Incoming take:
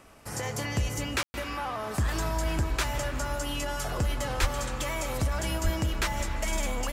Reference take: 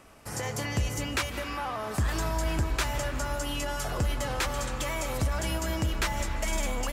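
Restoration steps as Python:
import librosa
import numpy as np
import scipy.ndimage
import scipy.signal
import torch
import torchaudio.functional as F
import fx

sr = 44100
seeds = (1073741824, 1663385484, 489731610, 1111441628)

y = fx.fix_deplosive(x, sr, at_s=(4.4, 5.63))
y = fx.fix_ambience(y, sr, seeds[0], print_start_s=0.0, print_end_s=0.5, start_s=1.23, end_s=1.34)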